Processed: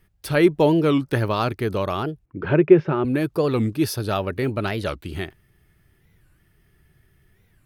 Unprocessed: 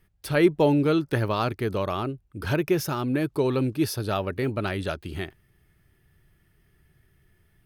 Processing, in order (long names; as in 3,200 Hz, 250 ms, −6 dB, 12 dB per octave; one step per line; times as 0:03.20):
0:02.27–0:03.05: loudspeaker in its box 120–2,600 Hz, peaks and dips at 160 Hz +7 dB, 380 Hz +9 dB, 550 Hz +4 dB
wow of a warped record 45 rpm, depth 250 cents
level +3 dB